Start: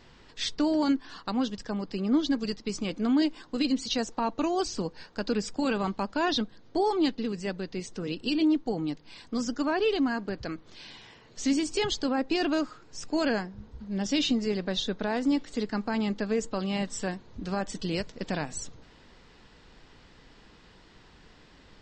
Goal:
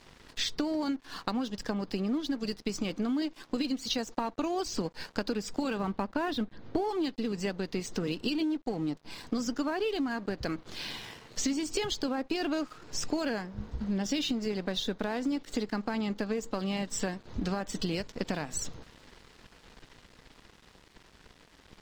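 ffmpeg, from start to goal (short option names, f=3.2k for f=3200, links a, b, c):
-filter_complex "[0:a]dynaudnorm=f=380:g=21:m=3dB,asettb=1/sr,asplit=3[a][b][c];[a]atrim=end=8.784[d];[b]atrim=start=8.78:end=9.26,asetpts=PTS-STARTPTS,afade=t=in:d=0.004:c=qsin,afade=t=out:st=0.476:d=0.004:c=qsin,equalizer=f=3k:t=o:w=1.8:g=-5.5[e];[c]atrim=start=9.256[f];[d][e]acrossfade=d=0.004:c1=hsin:c2=qsin[g];[g][f]acrossfade=d=0.004:c1=qsin:c2=hsin,acompressor=threshold=-34dB:ratio=10,asettb=1/sr,asplit=3[h][i][j];[h]atrim=end=5.794[k];[i]atrim=start=5.79:end=6.89,asetpts=PTS-STARTPTS,afade=t=in:d=0.004:c=qsin,afade=t=out:st=1.096:d=0.004:c=qsin,bass=f=250:g=3,treble=f=4k:g=-12[l];[j]atrim=start=6.886[m];[k][l]acrossfade=d=0.004:c1=hsin:c2=qsin[n];[n][m]acrossfade=d=0.004:c1=qsin:c2=hsin,aeval=exprs='sgn(val(0))*max(abs(val(0))-0.00168,0)':c=same,volume=6.5dB"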